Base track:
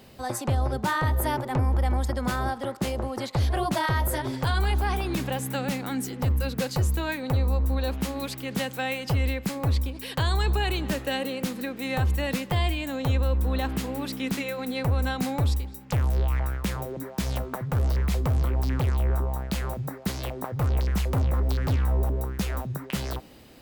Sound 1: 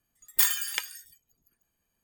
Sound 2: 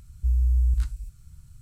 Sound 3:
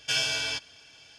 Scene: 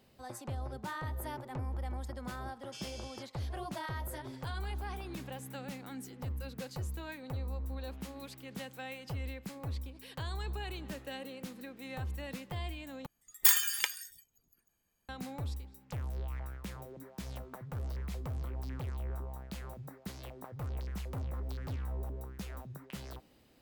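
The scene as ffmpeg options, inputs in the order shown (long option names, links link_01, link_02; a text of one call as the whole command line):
ffmpeg -i bed.wav -i cue0.wav -i cue1.wav -i cue2.wav -filter_complex "[0:a]volume=-14.5dB[link_01];[3:a]equalizer=frequency=1300:width=0.62:gain=-15[link_02];[link_01]asplit=2[link_03][link_04];[link_03]atrim=end=13.064[link_05];[1:a]atrim=end=2.03,asetpts=PTS-STARTPTS,volume=-1dB[link_06];[link_04]atrim=start=15.086[link_07];[link_02]atrim=end=1.18,asetpts=PTS-STARTPTS,volume=-16.5dB,afade=type=in:duration=0.004:curve=hsin,afade=type=out:start_time=1.176:duration=0.004:curve=hsin,adelay=2640[link_08];[link_05][link_06]acrossfade=duration=0.004:curve1=hsin:curve2=hsin[link_09];[link_09][link_07]acrossfade=duration=0.004:curve1=hsin:curve2=hsin[link_10];[link_10][link_08]amix=inputs=2:normalize=0" out.wav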